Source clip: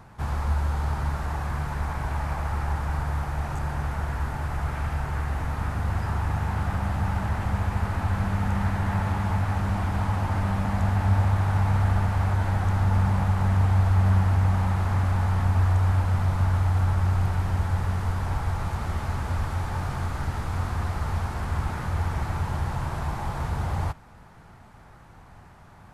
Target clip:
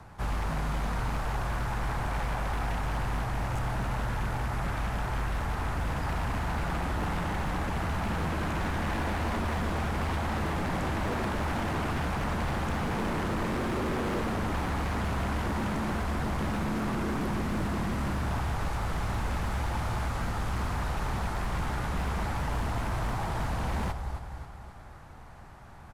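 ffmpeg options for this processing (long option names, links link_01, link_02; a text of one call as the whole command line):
ffmpeg -i in.wav -af "afreqshift=-21,aecho=1:1:269|538|807|1076|1345|1614:0.316|0.164|0.0855|0.0445|0.0231|0.012,aeval=exprs='0.0562*(abs(mod(val(0)/0.0562+3,4)-2)-1)':channel_layout=same" out.wav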